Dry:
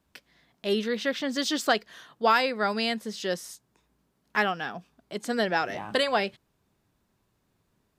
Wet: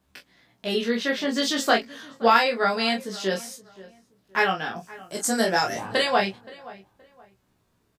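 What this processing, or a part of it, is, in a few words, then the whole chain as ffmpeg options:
double-tracked vocal: -filter_complex "[0:a]asettb=1/sr,asplit=3[a][b][c];[a]atrim=end=4.764[d];[b]atrim=start=4.76:end=5.83,asetpts=PTS-STARTPTS,afade=t=in:d=0.004:c=qsin,afade=t=out:st=1.066:d=0.004:c=qsin,highshelf=f=4.8k:t=q:w=1.5:g=12[e];[c]atrim=start=5.826[f];[d][e]acrossfade=d=0.004:c1=hsin:c2=qsin[g];[g][f]acrossfade=d=0.004:c1=qsin:c2=hsin,asplit=2[h][i];[i]adelay=26,volume=-5dB[j];[h][j]amix=inputs=2:normalize=0,flanger=delay=15.5:depth=2.4:speed=0.29,asplit=2[k][l];[l]adelay=523,lowpass=f=2.1k:p=1,volume=-19dB,asplit=2[m][n];[n]adelay=523,lowpass=f=2.1k:p=1,volume=0.29[o];[k][m][o]amix=inputs=3:normalize=0,volume=5.5dB"

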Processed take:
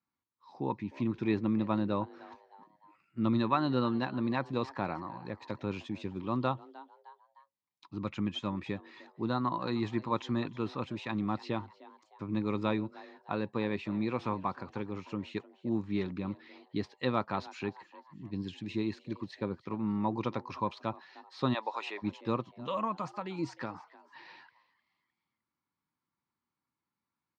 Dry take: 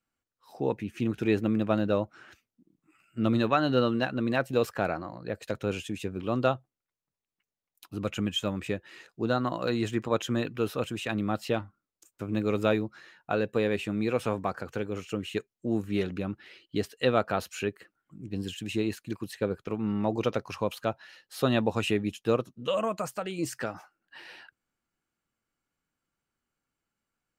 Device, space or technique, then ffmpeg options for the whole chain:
frequency-shifting delay pedal into a guitar cabinet: -filter_complex "[0:a]asplit=4[a][b][c][d];[b]adelay=306,afreqshift=140,volume=-20dB[e];[c]adelay=612,afreqshift=280,volume=-28.6dB[f];[d]adelay=918,afreqshift=420,volume=-37.3dB[g];[a][e][f][g]amix=inputs=4:normalize=0,highpass=97,equalizer=f=460:t=q:w=4:g=-9,equalizer=f=660:t=q:w=4:g=-9,equalizer=f=980:t=q:w=4:g=9,equalizer=f=1.5k:t=q:w=4:g=-8,equalizer=f=2.9k:t=q:w=4:g=-10,lowpass=f=4.6k:w=0.5412,lowpass=f=4.6k:w=1.3066,asplit=3[h][i][j];[h]afade=t=out:st=21.53:d=0.02[k];[i]highpass=f=500:w=0.5412,highpass=f=500:w=1.3066,afade=t=in:st=21.53:d=0.02,afade=t=out:st=22.02:d=0.02[l];[j]afade=t=in:st=22.02:d=0.02[m];[k][l][m]amix=inputs=3:normalize=0,volume=-2dB"

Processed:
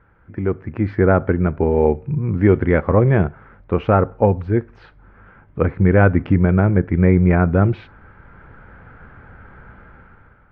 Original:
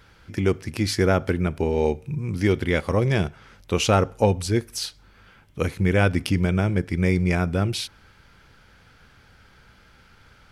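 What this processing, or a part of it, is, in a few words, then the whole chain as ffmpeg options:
action camera in a waterproof case: -af "lowpass=f=1.7k:w=0.5412,lowpass=f=1.7k:w=1.3066,dynaudnorm=f=150:g=9:m=13dB,volume=-1dB" -ar 22050 -c:a aac -b:a 64k

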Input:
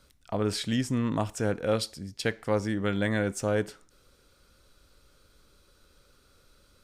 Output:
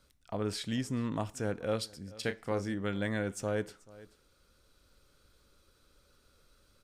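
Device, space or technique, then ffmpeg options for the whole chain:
ducked delay: -filter_complex "[0:a]asplit=3[a][b][c];[b]adelay=434,volume=-4.5dB[d];[c]apad=whole_len=320770[e];[d][e]sidechaincompress=threshold=-43dB:ratio=8:attack=8.7:release=859[f];[a][f]amix=inputs=2:normalize=0,asettb=1/sr,asplit=3[g][h][i];[g]atrim=end=2.204[j];[h]atrim=start=2.2:end=2.74,asetpts=PTS-STARTPTS,afade=t=in:d=0.004:c=qsin,afade=t=out:st=0.536:d=0.004:c=qsin,asplit=2[k][l];[l]adelay=31,volume=-10dB[m];[k][m]amix=inputs=2:normalize=0,atrim=end_sample=23814[n];[i]atrim=start=2.736[o];[j][n]acrossfade=d=0.004:c1=hsin:c2=qsin[p];[p][o]acrossfade=d=0.004:c1=qsin:c2=hsin,volume=-6dB"

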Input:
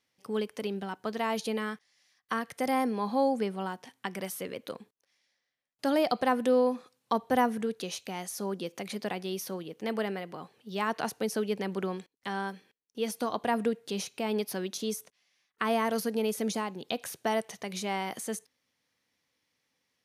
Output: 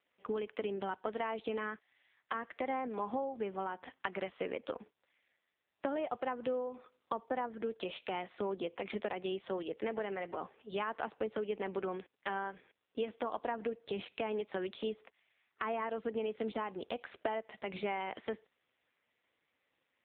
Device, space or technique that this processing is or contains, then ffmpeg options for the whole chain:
voicemail: -af "highpass=310,lowpass=3.1k,acompressor=threshold=-38dB:ratio=8,volume=6dB" -ar 8000 -c:a libopencore_amrnb -b:a 5900

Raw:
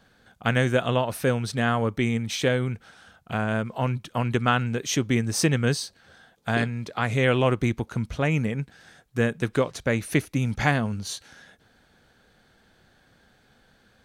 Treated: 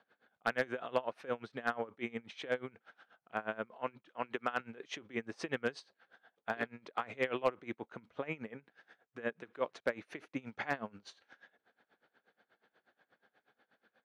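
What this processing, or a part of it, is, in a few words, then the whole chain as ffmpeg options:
helicopter radio: -filter_complex "[0:a]asettb=1/sr,asplit=3[a][b][c];[a]atrim=end=3.774[d];[b]atrim=start=3.77:end=4.6,asetpts=PTS-STARTPTS,afade=t=in:d=0.004:c=qsin,afade=t=out:st=0.826:d=0.004:c=qsin,highpass=f=210:p=1[e];[c]atrim=start=4.596[f];[d][e]acrossfade=d=0.004:c1=hsin:c2=qsin[g];[g][f]acrossfade=d=0.004:c1=qsin:c2=hsin,highpass=370,lowpass=2.5k,aeval=exprs='val(0)*pow(10,-22*(0.5-0.5*cos(2*PI*8.3*n/s))/20)':c=same,asoftclip=type=hard:threshold=-16dB,volume=-4dB"

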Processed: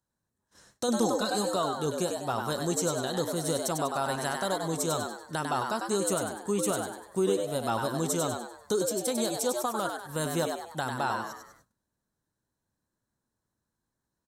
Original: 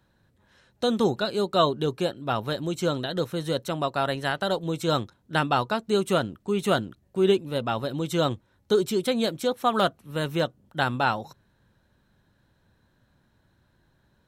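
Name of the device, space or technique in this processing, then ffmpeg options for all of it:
over-bright horn tweeter: -filter_complex "[0:a]equalizer=f=1k:t=o:w=1:g=5,equalizer=f=4k:t=o:w=1:g=-9,equalizer=f=8k:t=o:w=1:g=6,highshelf=f=3.5k:t=q:w=1.5:g=10,alimiter=limit=-17.5dB:level=0:latency=1:release=462,asplit=6[a][b][c][d][e][f];[b]adelay=98,afreqshift=110,volume=-5dB[g];[c]adelay=196,afreqshift=220,volume=-12.5dB[h];[d]adelay=294,afreqshift=330,volume=-20.1dB[i];[e]adelay=392,afreqshift=440,volume=-27.6dB[j];[f]adelay=490,afreqshift=550,volume=-35.1dB[k];[a][g][h][i][j][k]amix=inputs=6:normalize=0,agate=range=-20dB:threshold=-57dB:ratio=16:detection=peak,asettb=1/sr,asplit=3[l][m][n];[l]atrim=end=0.884[o];[m]atrim=start=0.88:end=1.49,asetpts=PTS-STARTPTS,afade=t=in:d=0.004:c=qsin,afade=t=out:st=0.606:d=0.004:c=qsin,aecho=1:1:3.9:0.68,atrim=end_sample=26901[p];[n]atrim=start=1.486[q];[o][p]acrossfade=d=0.004:c1=hsin:c2=qsin[r];[r][q]acrossfade=d=0.004:c1=qsin:c2=hsin,volume=-1dB"

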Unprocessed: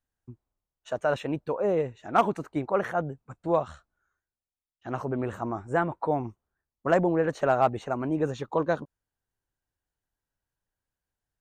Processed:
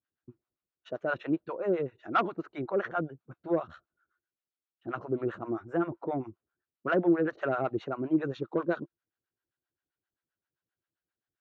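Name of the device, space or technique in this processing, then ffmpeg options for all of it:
guitar amplifier with harmonic tremolo: -filter_complex "[0:a]acrossover=split=620[a][b];[a]aeval=exprs='val(0)*(1-1/2+1/2*cos(2*PI*7.6*n/s))':c=same[c];[b]aeval=exprs='val(0)*(1-1/2-1/2*cos(2*PI*7.6*n/s))':c=same[d];[c][d]amix=inputs=2:normalize=0,asoftclip=type=tanh:threshold=-18dB,highpass=110,equalizer=f=340:t=q:w=4:g=9,equalizer=f=870:t=q:w=4:g=-5,equalizer=f=1.4k:t=q:w=4:g=6,lowpass=f=4.4k:w=0.5412,lowpass=f=4.4k:w=1.3066"

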